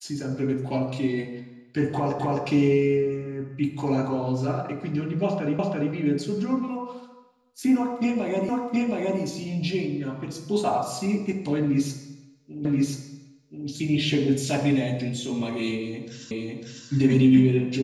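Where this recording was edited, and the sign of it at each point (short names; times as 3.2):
2.19 repeat of the last 0.26 s
5.59 repeat of the last 0.34 s
8.49 repeat of the last 0.72 s
12.65 repeat of the last 1.03 s
16.31 repeat of the last 0.55 s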